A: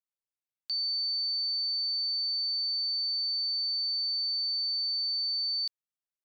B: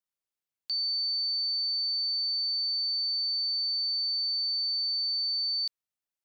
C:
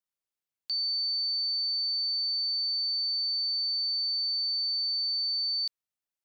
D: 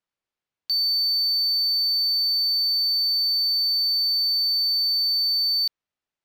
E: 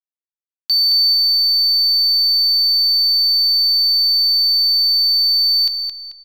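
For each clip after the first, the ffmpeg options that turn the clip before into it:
ffmpeg -i in.wav -af "acontrast=53,volume=-5dB" out.wav
ffmpeg -i in.wav -af anull out.wav
ffmpeg -i in.wav -af "adynamicsmooth=sensitivity=7:basefreq=4500,aeval=exprs='0.0422*(cos(1*acos(clip(val(0)/0.0422,-1,1)))-cos(1*PI/2))+0.000841*(cos(2*acos(clip(val(0)/0.0422,-1,1)))-cos(2*PI/2))':channel_layout=same,volume=8dB" out.wav
ffmpeg -i in.wav -filter_complex "[0:a]aeval=exprs='sgn(val(0))*max(abs(val(0))-0.00211,0)':channel_layout=same,asplit=2[link_01][link_02];[link_02]adelay=219,lowpass=frequency=4800:poles=1,volume=-5dB,asplit=2[link_03][link_04];[link_04]adelay=219,lowpass=frequency=4800:poles=1,volume=0.45,asplit=2[link_05][link_06];[link_06]adelay=219,lowpass=frequency=4800:poles=1,volume=0.45,asplit=2[link_07][link_08];[link_08]adelay=219,lowpass=frequency=4800:poles=1,volume=0.45,asplit=2[link_09][link_10];[link_10]adelay=219,lowpass=frequency=4800:poles=1,volume=0.45,asplit=2[link_11][link_12];[link_12]adelay=219,lowpass=frequency=4800:poles=1,volume=0.45[link_13];[link_01][link_03][link_05][link_07][link_09][link_11][link_13]amix=inputs=7:normalize=0,volume=8dB" out.wav

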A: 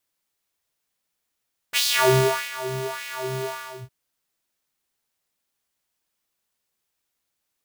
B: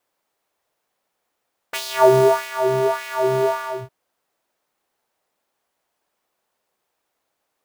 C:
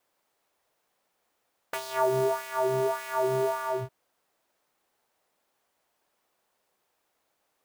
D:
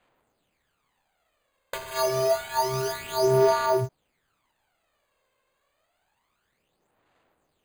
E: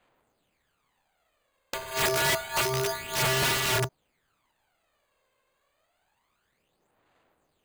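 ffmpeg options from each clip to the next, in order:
ffmpeg -i in.wav -filter_complex "[0:a]acrossover=split=880|4300[link_01][link_02][link_03];[link_01]acompressor=threshold=-22dB:ratio=4[link_04];[link_02]acompressor=threshold=-36dB:ratio=4[link_05];[link_03]acompressor=threshold=-31dB:ratio=4[link_06];[link_04][link_05][link_06]amix=inputs=3:normalize=0,equalizer=frequency=660:width=0.42:gain=15,volume=-1dB" out.wav
ffmpeg -i in.wav -filter_complex "[0:a]acrossover=split=1400|6300[link_01][link_02][link_03];[link_01]acompressor=threshold=-25dB:ratio=4[link_04];[link_02]acompressor=threshold=-45dB:ratio=4[link_05];[link_03]acompressor=threshold=-44dB:ratio=4[link_06];[link_04][link_05][link_06]amix=inputs=3:normalize=0" out.wav
ffmpeg -i in.wav -af "acrusher=samples=8:mix=1:aa=0.000001,aphaser=in_gain=1:out_gain=1:delay=1.9:decay=0.62:speed=0.28:type=sinusoidal" out.wav
ffmpeg -i in.wav -af "aeval=exprs='(mod(10*val(0)+1,2)-1)/10':channel_layout=same" out.wav

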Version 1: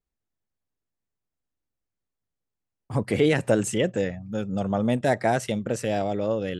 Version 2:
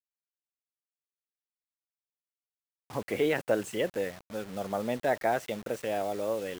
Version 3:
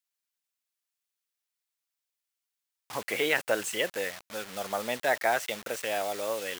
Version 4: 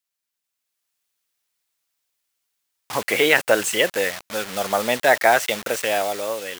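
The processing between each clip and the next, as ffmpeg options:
ffmpeg -i in.wav -af "aeval=exprs='0.398*(cos(1*acos(clip(val(0)/0.398,-1,1)))-cos(1*PI/2))+0.00501*(cos(6*acos(clip(val(0)/0.398,-1,1)))-cos(6*PI/2))':channel_layout=same,bass=frequency=250:gain=-13,treble=frequency=4000:gain=-10,acrusher=bits=6:mix=0:aa=0.000001,volume=-4dB" out.wav
ffmpeg -i in.wav -af "tiltshelf=frequency=640:gain=-9" out.wav
ffmpeg -i in.wav -af "dynaudnorm=framelen=200:gausssize=7:maxgain=7dB,volume=3.5dB" out.wav

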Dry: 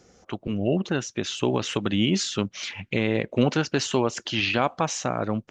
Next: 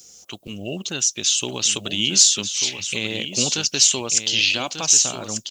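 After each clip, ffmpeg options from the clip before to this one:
ffmpeg -i in.wav -af "aemphasis=mode=production:type=75fm,aecho=1:1:1191:0.355,aexciter=amount=5.2:drive=2.5:freq=2600,volume=-6dB" out.wav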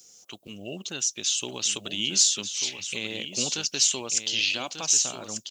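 ffmpeg -i in.wav -af "lowshelf=frequency=87:gain=-11.5,volume=-6.5dB" out.wav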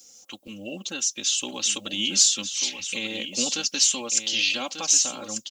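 ffmpeg -i in.wav -af "aecho=1:1:3.7:0.81" out.wav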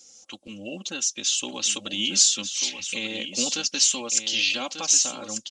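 ffmpeg -i in.wav -af "aresample=22050,aresample=44100" out.wav

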